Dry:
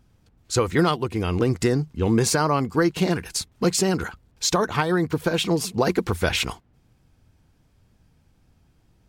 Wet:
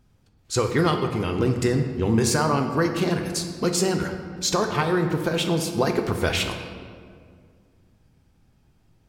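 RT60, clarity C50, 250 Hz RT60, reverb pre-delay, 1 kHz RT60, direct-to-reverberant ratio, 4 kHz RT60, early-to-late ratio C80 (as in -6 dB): 2.1 s, 6.5 dB, 2.5 s, 5 ms, 1.9 s, 4.5 dB, 1.2 s, 8.0 dB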